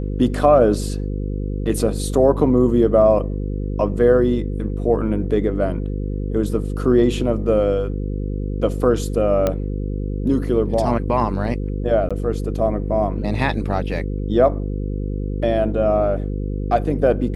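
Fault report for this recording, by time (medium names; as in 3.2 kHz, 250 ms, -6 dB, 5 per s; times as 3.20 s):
buzz 50 Hz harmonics 10 -24 dBFS
9.47 s: pop -7 dBFS
12.09–12.11 s: dropout 16 ms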